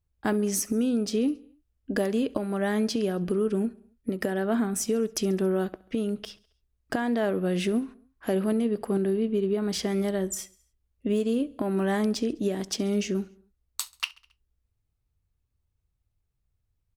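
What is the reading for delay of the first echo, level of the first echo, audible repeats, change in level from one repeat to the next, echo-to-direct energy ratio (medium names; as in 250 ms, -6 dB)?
68 ms, -23.5 dB, 3, -4.5 dB, -21.5 dB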